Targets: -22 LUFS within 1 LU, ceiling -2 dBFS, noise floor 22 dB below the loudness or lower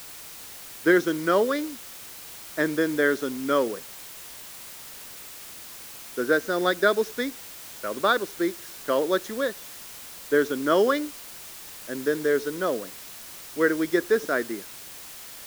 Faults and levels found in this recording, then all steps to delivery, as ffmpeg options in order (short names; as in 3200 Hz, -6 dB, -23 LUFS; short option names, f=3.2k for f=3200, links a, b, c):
noise floor -42 dBFS; noise floor target -48 dBFS; loudness -25.5 LUFS; peak -7.5 dBFS; loudness target -22.0 LUFS
-> -af "afftdn=nr=6:nf=-42"
-af "volume=3.5dB"